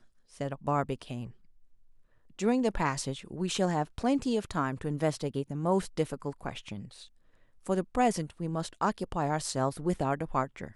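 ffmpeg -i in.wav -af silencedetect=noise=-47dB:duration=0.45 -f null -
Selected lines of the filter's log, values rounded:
silence_start: 1.31
silence_end: 2.39 | silence_duration: 1.08
silence_start: 7.07
silence_end: 7.66 | silence_duration: 0.59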